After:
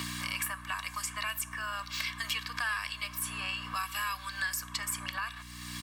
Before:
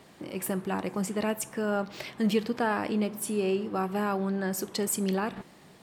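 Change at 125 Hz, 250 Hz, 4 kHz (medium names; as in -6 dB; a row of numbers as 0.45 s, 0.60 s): -9.5 dB, -19.5 dB, +5.5 dB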